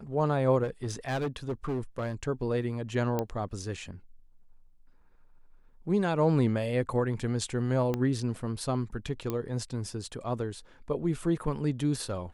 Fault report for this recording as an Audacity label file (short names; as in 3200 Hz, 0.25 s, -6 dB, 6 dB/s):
0.630000	2.140000	clipped -27 dBFS
3.190000	3.190000	pop -16 dBFS
7.940000	7.940000	pop -17 dBFS
9.300000	9.300000	pop -18 dBFS